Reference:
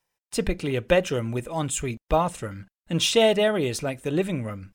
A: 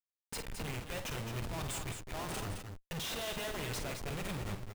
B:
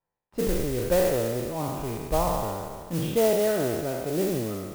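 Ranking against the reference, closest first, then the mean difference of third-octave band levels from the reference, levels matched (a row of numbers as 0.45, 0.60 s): B, A; 10.5, 14.0 dB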